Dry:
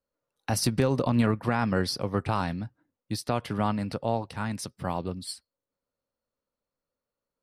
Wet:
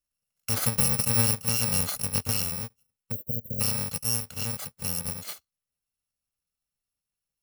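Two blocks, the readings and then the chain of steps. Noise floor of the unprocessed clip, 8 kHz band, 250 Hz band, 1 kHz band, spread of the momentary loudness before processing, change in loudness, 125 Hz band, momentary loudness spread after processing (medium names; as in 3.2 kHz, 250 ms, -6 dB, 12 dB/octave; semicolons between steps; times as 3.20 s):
under -85 dBFS, +11.0 dB, -8.0 dB, -9.5 dB, 13 LU, +3.0 dB, -2.0 dB, 14 LU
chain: bit-reversed sample order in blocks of 128 samples; spectral selection erased 3.12–3.60 s, 620–12000 Hz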